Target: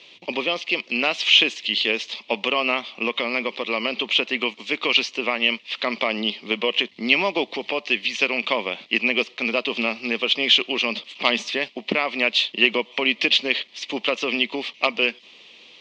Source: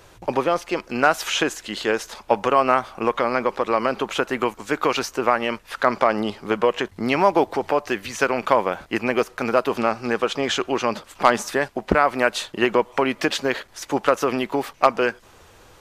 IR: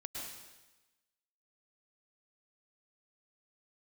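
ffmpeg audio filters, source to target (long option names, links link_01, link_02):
-af "aexciter=amount=8.4:drive=8.4:freq=2300,highpass=frequency=180:width=0.5412,highpass=frequency=180:width=1.3066,equalizer=frequency=230:width_type=q:width=4:gain=5,equalizer=frequency=810:width_type=q:width=4:gain=-5,equalizer=frequency=1500:width_type=q:width=4:gain=-9,lowpass=frequency=3200:width=0.5412,lowpass=frequency=3200:width=1.3066,volume=-5.5dB"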